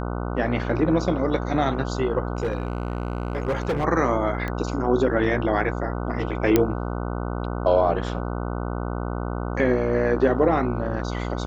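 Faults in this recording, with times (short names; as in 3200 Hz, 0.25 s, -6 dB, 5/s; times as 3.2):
buzz 60 Hz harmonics 25 -28 dBFS
2.37–3.85 clipped -20 dBFS
4.48 pop -17 dBFS
6.56 pop -4 dBFS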